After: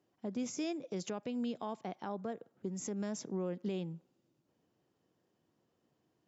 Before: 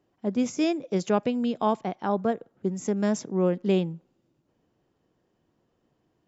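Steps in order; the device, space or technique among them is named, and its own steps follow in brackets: broadcast voice chain (high-pass 91 Hz; de-esser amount 70%; compression, threshold -26 dBFS, peak gain reduction 9.5 dB; peaking EQ 5.7 kHz +4 dB 1.5 oct; peak limiter -23 dBFS, peak gain reduction 6.5 dB); trim -6 dB

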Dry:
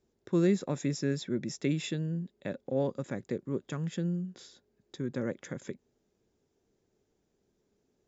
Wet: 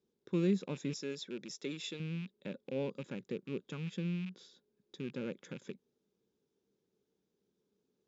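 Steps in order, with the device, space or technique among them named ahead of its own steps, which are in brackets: 0.93–2.00 s: tone controls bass -13 dB, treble +5 dB; car door speaker with a rattle (rattle on loud lows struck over -41 dBFS, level -33 dBFS; cabinet simulation 91–6600 Hz, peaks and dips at 98 Hz -9 dB, 190 Hz +5 dB, 450 Hz +4 dB, 680 Hz -8 dB, 1.9 kHz -5 dB, 3.6 kHz +4 dB); trim -7 dB

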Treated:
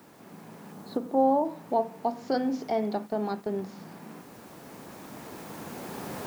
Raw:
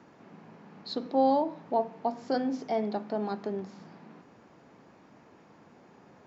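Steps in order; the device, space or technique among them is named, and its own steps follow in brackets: 0.72–1.45 s: low-pass 1.4 kHz 12 dB/octave; 2.70–3.59 s: gate -37 dBFS, range -11 dB; cheap recorder with automatic gain (white noise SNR 32 dB; recorder AGC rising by 5.9 dB/s); trim +1.5 dB

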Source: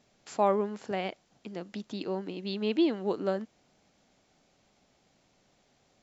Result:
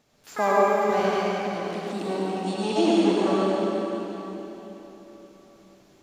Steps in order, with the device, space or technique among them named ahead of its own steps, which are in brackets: shimmer-style reverb (harmony voices +12 st -8 dB; reverberation RT60 3.9 s, pre-delay 75 ms, DRR -6.5 dB); 1.92–2.71 s: peaking EQ 4.8 kHz -3.5 dB 1.4 oct

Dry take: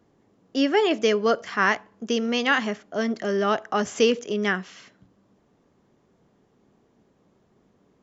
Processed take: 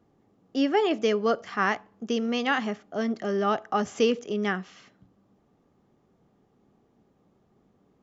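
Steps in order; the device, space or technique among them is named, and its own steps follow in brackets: peaking EQ 1.1 kHz -5.5 dB 2.3 oct; inside a helmet (treble shelf 4.6 kHz -8.5 dB; small resonant body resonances 800/1200 Hz, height 7 dB, ringing for 20 ms); trim -1 dB

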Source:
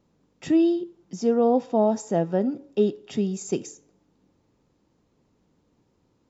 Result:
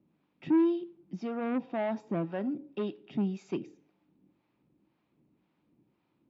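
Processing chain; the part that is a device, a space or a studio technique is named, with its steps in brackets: guitar amplifier with harmonic tremolo (harmonic tremolo 1.9 Hz, depth 70%, crossover 560 Hz; saturation -22.5 dBFS, distortion -11 dB; cabinet simulation 81–3800 Hz, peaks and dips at 90 Hz -8 dB, 140 Hz +3 dB, 200 Hz +3 dB, 320 Hz +6 dB, 470 Hz -7 dB, 2.4 kHz +6 dB); trim -3 dB

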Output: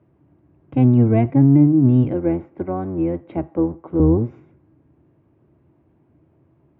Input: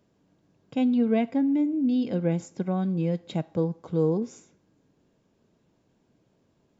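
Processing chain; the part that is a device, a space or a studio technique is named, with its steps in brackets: sub-octave bass pedal (octave divider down 1 oct, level -1 dB; cabinet simulation 68–2100 Hz, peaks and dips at 71 Hz +6 dB, 140 Hz +6 dB, 200 Hz -6 dB, 330 Hz +8 dB, 470 Hz -6 dB, 1.6 kHz -5 dB); 2.13–4.00 s: three-band isolator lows -14 dB, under 240 Hz, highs -12 dB, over 3.3 kHz; trim +6.5 dB

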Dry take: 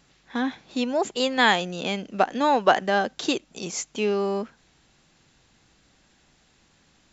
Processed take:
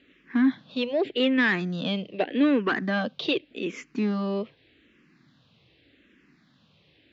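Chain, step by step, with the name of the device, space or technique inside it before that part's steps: peaking EQ 800 Hz -12 dB 0.61 oct; barber-pole phaser into a guitar amplifier (barber-pole phaser -0.84 Hz; saturation -22.5 dBFS, distortion -11 dB; cabinet simulation 110–3600 Hz, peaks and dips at 280 Hz +5 dB, 950 Hz -3 dB, 1.4 kHz -5 dB); trim +6 dB

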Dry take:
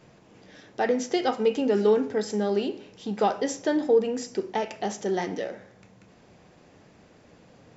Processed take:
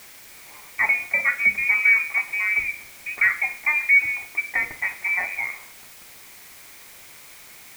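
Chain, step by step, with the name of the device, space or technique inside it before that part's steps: scrambled radio voice (band-pass 320–2600 Hz; frequency inversion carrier 2.7 kHz; white noise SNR 21 dB); trim +4.5 dB

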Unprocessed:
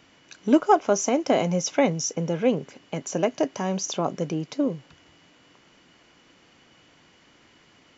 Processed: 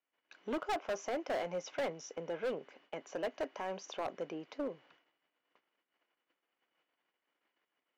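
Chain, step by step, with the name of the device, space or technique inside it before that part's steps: walkie-talkie (band-pass 450–2700 Hz; hard clipper -24 dBFS, distortion -6 dB; gate -57 dBFS, range -26 dB); trim -7.5 dB

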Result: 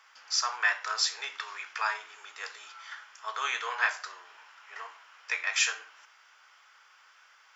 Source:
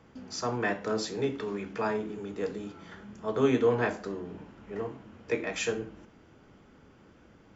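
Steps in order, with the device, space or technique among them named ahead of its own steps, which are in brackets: headphones lying on a table (high-pass 1.1 kHz 24 dB/octave; peaking EQ 5.3 kHz +5.5 dB 0.25 oct); trim +7.5 dB

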